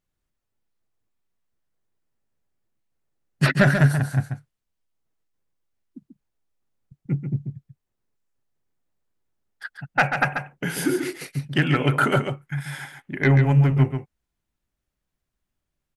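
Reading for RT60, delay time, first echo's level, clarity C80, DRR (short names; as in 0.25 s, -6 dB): none, 0.138 s, -7.0 dB, none, none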